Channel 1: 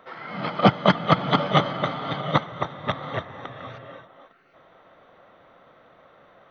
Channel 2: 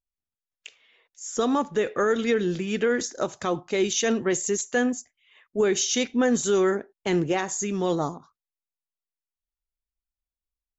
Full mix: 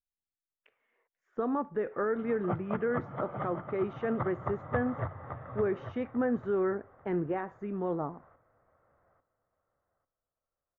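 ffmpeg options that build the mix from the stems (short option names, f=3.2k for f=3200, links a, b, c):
-filter_complex "[0:a]lowshelf=f=130:t=q:w=1.5:g=10.5,bandreject=f=50:t=h:w=6,bandreject=f=100:t=h:w=6,bandreject=f=150:t=h:w=6,adelay=1850,volume=-8dB,afade=t=in:st=4.11:d=0.39:silence=0.334965,asplit=2[a][b];[b]volume=-8dB[c];[1:a]volume=-7.5dB[d];[c]aecho=0:1:845|1690|2535|3380:1|0.25|0.0625|0.0156[e];[a][d][e]amix=inputs=3:normalize=0,lowpass=f=1.7k:w=0.5412,lowpass=f=1.7k:w=1.3066"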